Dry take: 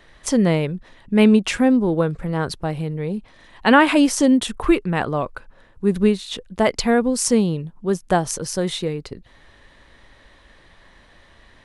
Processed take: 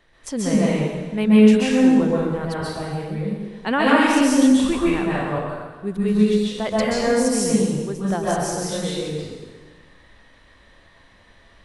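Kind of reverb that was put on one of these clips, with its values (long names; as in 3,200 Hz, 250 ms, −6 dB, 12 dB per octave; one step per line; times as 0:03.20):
dense smooth reverb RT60 1.4 s, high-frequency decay 0.9×, pre-delay 115 ms, DRR −7 dB
level −9 dB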